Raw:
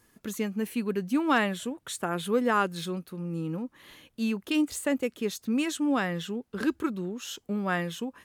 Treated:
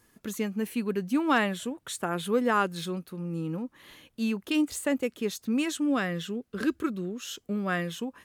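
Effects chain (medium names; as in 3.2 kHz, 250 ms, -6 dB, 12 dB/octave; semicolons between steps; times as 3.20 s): 5.81–7.89 s: peaking EQ 880 Hz -12.5 dB 0.21 oct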